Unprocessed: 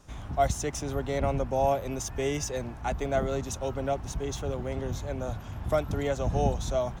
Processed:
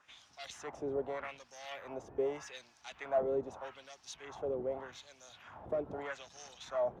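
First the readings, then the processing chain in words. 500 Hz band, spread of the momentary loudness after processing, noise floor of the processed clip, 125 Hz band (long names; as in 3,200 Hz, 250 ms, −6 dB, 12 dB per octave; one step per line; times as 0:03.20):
−7.5 dB, 16 LU, −66 dBFS, −24.0 dB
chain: soft clipping −24.5 dBFS, distortion −11 dB
auto-filter band-pass sine 0.82 Hz 410–5,500 Hz
level +2.5 dB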